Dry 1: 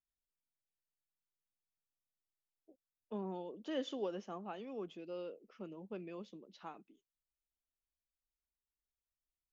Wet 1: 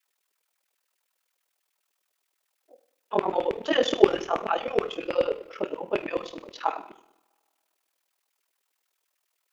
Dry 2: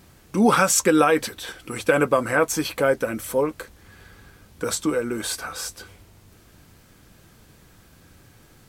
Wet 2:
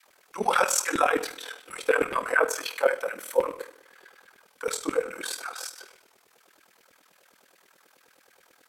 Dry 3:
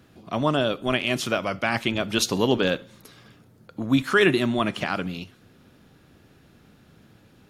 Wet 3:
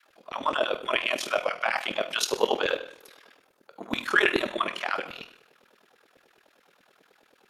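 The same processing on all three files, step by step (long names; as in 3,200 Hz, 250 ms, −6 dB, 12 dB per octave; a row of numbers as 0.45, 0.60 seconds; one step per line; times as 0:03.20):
auto-filter high-pass saw down 9.4 Hz 360–2,400 Hz
coupled-rooms reverb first 0.65 s, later 2.1 s, from −26 dB, DRR 7.5 dB
ring modulation 20 Hz
loudness normalisation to −27 LKFS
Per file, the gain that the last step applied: +20.0, −4.0, −1.5 decibels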